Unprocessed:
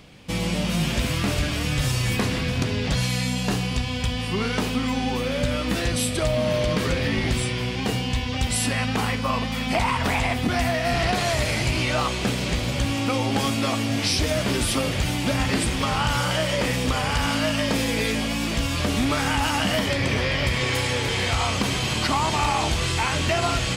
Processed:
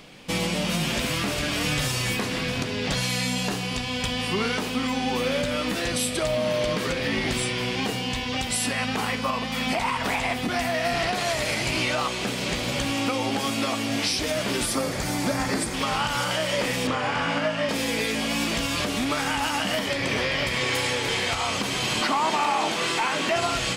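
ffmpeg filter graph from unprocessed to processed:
ffmpeg -i in.wav -filter_complex "[0:a]asettb=1/sr,asplit=3[link_01][link_02][link_03];[link_01]atrim=end=14.664[link_04];[link_02]atrim=start=14.66:end=15.74,asetpts=PTS-STARTPTS,afade=type=in:duration=0.004:curve=qsin,afade=type=out:start_time=1.076:duration=0.004:curve=qsin,equalizer=frequency=2900:width=2.6:gain=-11.5,bandreject=frequency=3800:width=28[link_05];[link_03]atrim=start=15.736[link_06];[link_04][link_05]acrossfade=duration=0.004:curve1=hsin:curve2=qsin[link_07];[link_07][link_06]acrossfade=duration=0.004:curve1=qsin:curve2=hsin,asettb=1/sr,asplit=3[link_08][link_09][link_10];[link_08]atrim=end=16.874[link_11];[link_09]atrim=start=16.87:end=17.69,asetpts=PTS-STARTPTS,afade=type=in:duration=0.004:curve=qsin,afade=type=out:start_time=0.816:duration=0.004:curve=qsin,acrossover=split=2500[link_12][link_13];[link_13]acompressor=threshold=-39dB:ratio=4:attack=1:release=60[link_14];[link_12][link_14]amix=inputs=2:normalize=0,highpass=100,lowpass=7400,asplit=2[link_15][link_16];[link_16]adelay=24,volume=-2dB[link_17];[link_15][link_17]amix=inputs=2:normalize=0,atrim=end_sample=36162[link_18];[link_10]atrim=start=17.686[link_19];[link_11][link_18]acrossfade=duration=0.004:curve1=hsin:curve2=qsin[link_20];[link_20][link_19]acrossfade=duration=0.004:curve1=qsin:curve2=hsin,asettb=1/sr,asplit=3[link_21][link_22][link_23];[link_21]atrim=end=22.014[link_24];[link_22]atrim=start=22.01:end=23.36,asetpts=PTS-STARTPTS,afade=type=in:duration=0.004:curve=qsin,afade=type=out:start_time=1.346:duration=0.004:curve=qsin,highpass=frequency=200:width_type=q:width=1.6,highshelf=frequency=6900:gain=10,asplit=2[link_25][link_26];[link_26]highpass=frequency=720:poles=1,volume=10dB,asoftclip=type=tanh:threshold=-10dB[link_27];[link_25][link_27]amix=inputs=2:normalize=0,lowpass=frequency=1500:poles=1,volume=-6dB[link_28];[link_23]atrim=start=23.356[link_29];[link_24][link_28]acrossfade=duration=0.004:curve1=hsin:curve2=qsin[link_30];[link_30][link_29]acrossfade=duration=0.004:curve1=qsin:curve2=hsin,equalizer=frequency=69:width_type=o:width=1.9:gain=-14,alimiter=limit=-18.5dB:level=0:latency=1:release=448,volume=3.5dB" out.wav

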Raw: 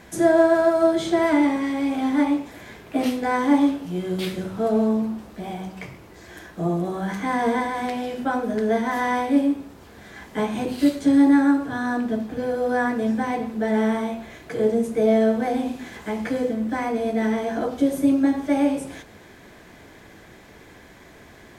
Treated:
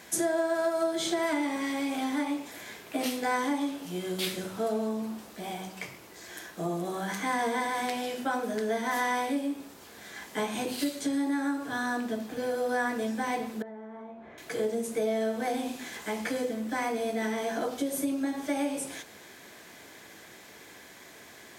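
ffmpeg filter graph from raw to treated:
ffmpeg -i in.wav -filter_complex "[0:a]asettb=1/sr,asplit=3[link_01][link_02][link_03];[link_01]atrim=end=13.624[link_04];[link_02]atrim=start=13.62:end=14.38,asetpts=PTS-STARTPTS,afade=type=in:duration=0.004:curve=qsin,afade=type=out:start_time=0.756:duration=0.004:curve=qsin,lowpass=1200,acompressor=threshold=-37dB:ratio=4:attack=3.2:release=140:knee=1:detection=peak[link_05];[link_03]atrim=start=14.376[link_06];[link_04][link_05]acrossfade=duration=0.004:curve1=hsin:curve2=qsin[link_07];[link_07][link_06]acrossfade=duration=0.004:curve1=qsin:curve2=hsin,acompressor=threshold=-21dB:ratio=4,highpass=frequency=300:poles=1,highshelf=frequency=3400:gain=10.5,volume=-3.5dB" out.wav

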